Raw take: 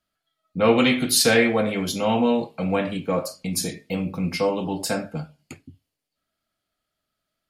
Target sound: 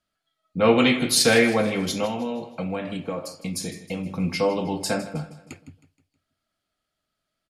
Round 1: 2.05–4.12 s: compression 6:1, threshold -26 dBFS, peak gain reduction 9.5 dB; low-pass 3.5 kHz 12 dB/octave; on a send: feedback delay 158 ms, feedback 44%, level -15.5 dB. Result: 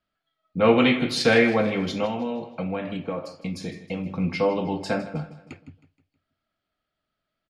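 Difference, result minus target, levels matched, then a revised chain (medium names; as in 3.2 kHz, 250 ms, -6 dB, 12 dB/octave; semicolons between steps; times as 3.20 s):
8 kHz band -13.0 dB
2.05–4.12 s: compression 6:1, threshold -26 dBFS, peak gain reduction 9.5 dB; low-pass 11 kHz 12 dB/octave; on a send: feedback delay 158 ms, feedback 44%, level -15.5 dB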